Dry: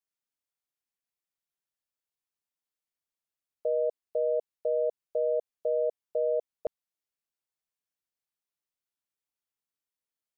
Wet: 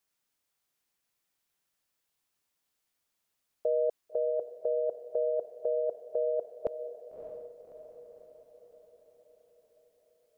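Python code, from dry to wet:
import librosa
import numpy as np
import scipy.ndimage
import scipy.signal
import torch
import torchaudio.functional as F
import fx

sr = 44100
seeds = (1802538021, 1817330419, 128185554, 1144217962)

p1 = fx.over_compress(x, sr, threshold_db=-34.0, ratio=-0.5)
p2 = x + F.gain(torch.from_numpy(p1), 0.0).numpy()
p3 = fx.echo_diffused(p2, sr, ms=604, feedback_pct=54, wet_db=-9.0)
y = F.gain(torch.from_numpy(p3), -2.5).numpy()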